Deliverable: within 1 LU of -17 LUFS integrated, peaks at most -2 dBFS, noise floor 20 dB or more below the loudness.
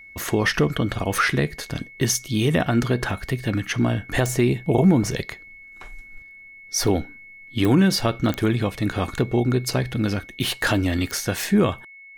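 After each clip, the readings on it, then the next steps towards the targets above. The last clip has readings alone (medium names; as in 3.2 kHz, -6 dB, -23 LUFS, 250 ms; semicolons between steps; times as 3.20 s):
clicks found 5; steady tone 2.2 kHz; tone level -42 dBFS; loudness -22.5 LUFS; peak level -6.0 dBFS; loudness target -17.0 LUFS
-> de-click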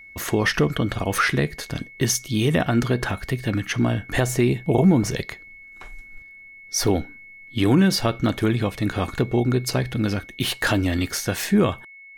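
clicks found 0; steady tone 2.2 kHz; tone level -42 dBFS
-> band-stop 2.2 kHz, Q 30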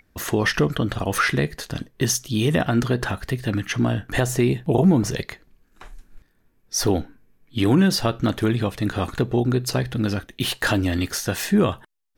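steady tone not found; loudness -22.5 LUFS; peak level -6.0 dBFS; loudness target -17.0 LUFS
-> trim +5.5 dB; peak limiter -2 dBFS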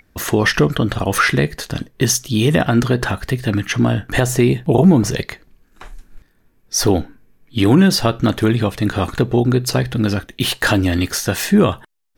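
loudness -17.0 LUFS; peak level -2.0 dBFS; noise floor -58 dBFS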